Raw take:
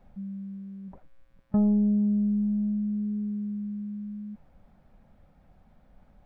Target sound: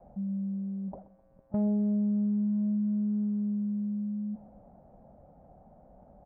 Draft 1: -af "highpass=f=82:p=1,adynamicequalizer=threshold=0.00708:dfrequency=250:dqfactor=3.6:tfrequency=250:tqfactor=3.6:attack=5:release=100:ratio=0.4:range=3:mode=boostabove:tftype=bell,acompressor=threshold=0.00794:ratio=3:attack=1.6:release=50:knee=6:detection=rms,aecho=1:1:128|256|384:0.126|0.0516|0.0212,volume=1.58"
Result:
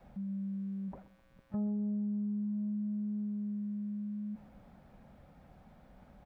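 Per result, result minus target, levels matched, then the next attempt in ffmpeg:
compression: peak gain reduction +5 dB; 500 Hz band -4.0 dB
-af "highpass=f=82:p=1,adynamicequalizer=threshold=0.00708:dfrequency=250:dqfactor=3.6:tfrequency=250:tqfactor=3.6:attack=5:release=100:ratio=0.4:range=3:mode=boostabove:tftype=bell,acompressor=threshold=0.0251:ratio=3:attack=1.6:release=50:knee=6:detection=rms,aecho=1:1:128|256|384:0.126|0.0516|0.0212,volume=1.58"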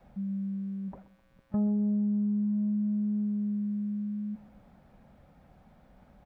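500 Hz band -4.0 dB
-af "highpass=f=82:p=1,adynamicequalizer=threshold=0.00708:dfrequency=250:dqfactor=3.6:tfrequency=250:tqfactor=3.6:attack=5:release=100:ratio=0.4:range=3:mode=boostabove:tftype=bell,lowpass=f=680:t=q:w=2.6,acompressor=threshold=0.0251:ratio=3:attack=1.6:release=50:knee=6:detection=rms,aecho=1:1:128|256|384:0.126|0.0516|0.0212,volume=1.58"

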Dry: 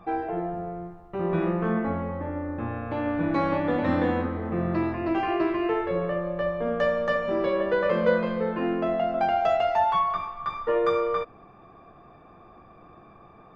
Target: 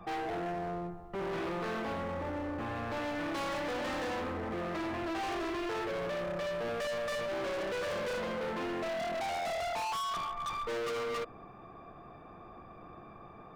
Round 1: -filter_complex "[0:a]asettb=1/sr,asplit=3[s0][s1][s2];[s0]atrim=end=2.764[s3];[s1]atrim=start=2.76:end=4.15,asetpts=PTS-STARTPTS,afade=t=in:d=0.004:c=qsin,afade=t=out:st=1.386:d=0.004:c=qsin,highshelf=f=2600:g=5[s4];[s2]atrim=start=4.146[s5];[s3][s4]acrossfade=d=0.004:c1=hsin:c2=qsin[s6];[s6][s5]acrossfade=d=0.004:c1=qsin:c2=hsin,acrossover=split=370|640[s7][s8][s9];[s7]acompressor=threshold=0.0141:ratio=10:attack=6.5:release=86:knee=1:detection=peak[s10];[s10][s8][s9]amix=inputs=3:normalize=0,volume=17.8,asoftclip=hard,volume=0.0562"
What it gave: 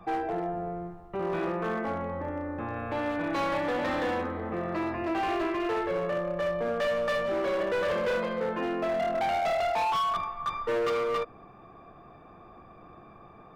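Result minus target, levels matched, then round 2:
overload inside the chain: distortion -6 dB
-filter_complex "[0:a]asettb=1/sr,asplit=3[s0][s1][s2];[s0]atrim=end=2.764[s3];[s1]atrim=start=2.76:end=4.15,asetpts=PTS-STARTPTS,afade=t=in:d=0.004:c=qsin,afade=t=out:st=1.386:d=0.004:c=qsin,highshelf=f=2600:g=5[s4];[s2]atrim=start=4.146[s5];[s3][s4]acrossfade=d=0.004:c1=hsin:c2=qsin[s6];[s6][s5]acrossfade=d=0.004:c1=qsin:c2=hsin,acrossover=split=370|640[s7][s8][s9];[s7]acompressor=threshold=0.0141:ratio=10:attack=6.5:release=86:knee=1:detection=peak[s10];[s10][s8][s9]amix=inputs=3:normalize=0,volume=50.1,asoftclip=hard,volume=0.02"

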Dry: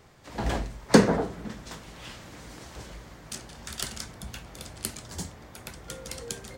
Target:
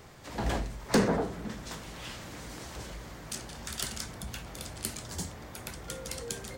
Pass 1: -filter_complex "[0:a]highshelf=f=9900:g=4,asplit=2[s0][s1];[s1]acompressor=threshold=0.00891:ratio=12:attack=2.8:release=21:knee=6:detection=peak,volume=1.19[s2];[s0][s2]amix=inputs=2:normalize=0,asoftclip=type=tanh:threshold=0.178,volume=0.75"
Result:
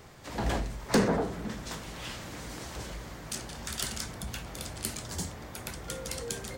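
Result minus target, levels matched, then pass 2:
compression: peak gain reduction -7 dB
-filter_complex "[0:a]highshelf=f=9900:g=4,asplit=2[s0][s1];[s1]acompressor=threshold=0.00376:ratio=12:attack=2.8:release=21:knee=6:detection=peak,volume=1.19[s2];[s0][s2]amix=inputs=2:normalize=0,asoftclip=type=tanh:threshold=0.178,volume=0.75"

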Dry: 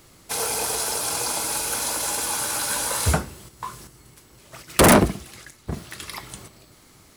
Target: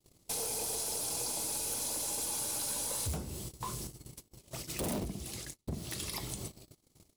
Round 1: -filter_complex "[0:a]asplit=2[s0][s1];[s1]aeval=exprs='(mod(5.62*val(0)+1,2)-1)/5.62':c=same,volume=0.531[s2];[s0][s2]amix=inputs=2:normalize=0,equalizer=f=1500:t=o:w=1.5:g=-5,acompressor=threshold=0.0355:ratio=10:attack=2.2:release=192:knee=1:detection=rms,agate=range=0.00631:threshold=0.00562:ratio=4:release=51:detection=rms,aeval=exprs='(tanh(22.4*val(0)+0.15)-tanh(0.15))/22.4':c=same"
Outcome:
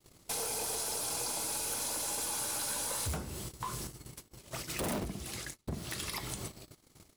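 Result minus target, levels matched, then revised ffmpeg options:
2 kHz band +5.5 dB
-filter_complex "[0:a]asplit=2[s0][s1];[s1]aeval=exprs='(mod(5.62*val(0)+1,2)-1)/5.62':c=same,volume=0.531[s2];[s0][s2]amix=inputs=2:normalize=0,equalizer=f=1500:t=o:w=1.5:g=-14,acompressor=threshold=0.0355:ratio=10:attack=2.2:release=192:knee=1:detection=rms,agate=range=0.00631:threshold=0.00562:ratio=4:release=51:detection=rms,aeval=exprs='(tanh(22.4*val(0)+0.15)-tanh(0.15))/22.4':c=same"

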